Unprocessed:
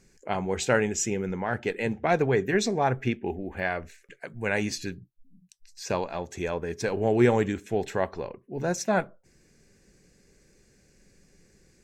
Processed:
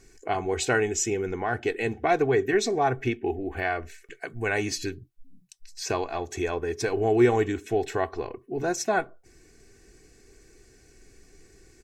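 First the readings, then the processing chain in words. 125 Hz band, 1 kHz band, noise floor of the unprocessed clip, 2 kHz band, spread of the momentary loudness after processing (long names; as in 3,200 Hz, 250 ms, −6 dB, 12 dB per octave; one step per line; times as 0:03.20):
−2.0 dB, +2.0 dB, −63 dBFS, +1.0 dB, 11 LU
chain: comb filter 2.7 ms, depth 69%
in parallel at +1.5 dB: downward compressor, threshold −34 dBFS, peak gain reduction 20 dB
on the sum: level −3 dB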